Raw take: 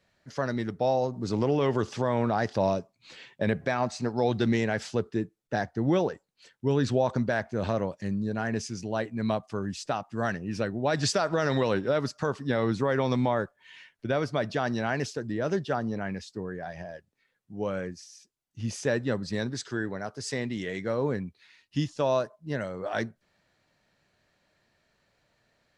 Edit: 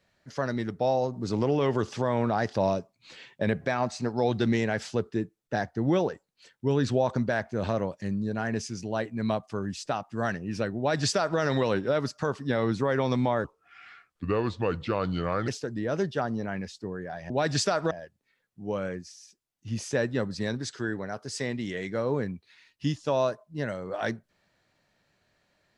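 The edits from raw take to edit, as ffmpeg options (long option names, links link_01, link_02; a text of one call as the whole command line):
ffmpeg -i in.wav -filter_complex "[0:a]asplit=5[link_01][link_02][link_03][link_04][link_05];[link_01]atrim=end=13.444[link_06];[link_02]atrim=start=13.44:end=15.01,asetpts=PTS-STARTPTS,asetrate=33957,aresample=44100,atrim=end_sample=89918,asetpts=PTS-STARTPTS[link_07];[link_03]atrim=start=15.006:end=16.832[link_08];[link_04]atrim=start=10.778:end=11.392[link_09];[link_05]atrim=start=16.828[link_10];[link_06][link_07]acrossfade=duration=0.004:curve1=hsin:curve2=hsin[link_11];[link_11][link_08]acrossfade=duration=0.004:curve1=hsin:curve2=hsin[link_12];[link_12][link_09]acrossfade=duration=0.004:curve1=hsin:curve2=hsin[link_13];[link_13][link_10]acrossfade=duration=0.004:curve1=hsin:curve2=hsin" out.wav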